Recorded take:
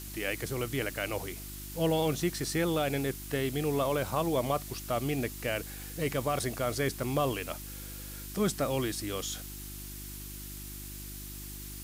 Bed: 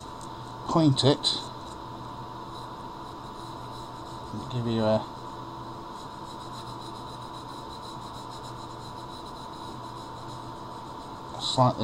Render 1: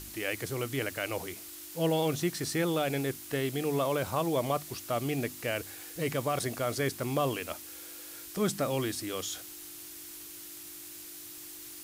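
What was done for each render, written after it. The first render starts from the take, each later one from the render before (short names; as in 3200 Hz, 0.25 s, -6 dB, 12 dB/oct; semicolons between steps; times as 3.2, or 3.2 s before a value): de-hum 50 Hz, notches 5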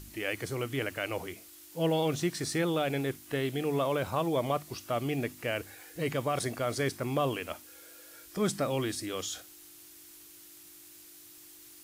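noise print and reduce 7 dB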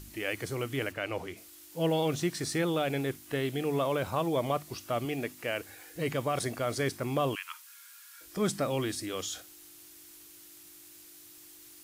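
0.91–1.36 high shelf 5400 Hz -> 10000 Hz -11.5 dB; 5.05–5.69 low shelf 140 Hz -10.5 dB; 7.35–8.21 brick-wall FIR high-pass 900 Hz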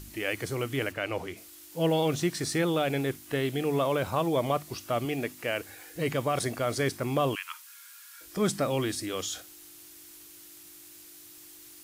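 gain +2.5 dB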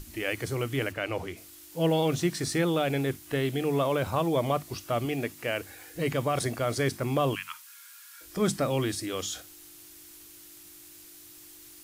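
low shelf 110 Hz +7 dB; notches 50/100/150/200/250 Hz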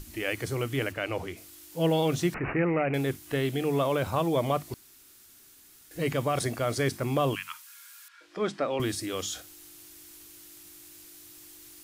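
2.34–2.94 careless resampling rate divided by 8×, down none, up filtered; 4.74–5.91 room tone; 8.08–8.8 BPF 310–3300 Hz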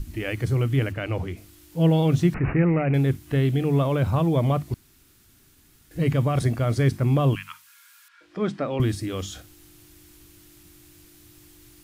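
tone controls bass +13 dB, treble -5 dB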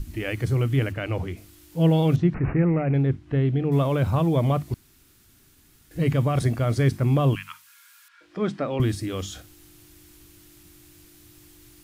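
2.16–3.72 tape spacing loss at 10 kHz 26 dB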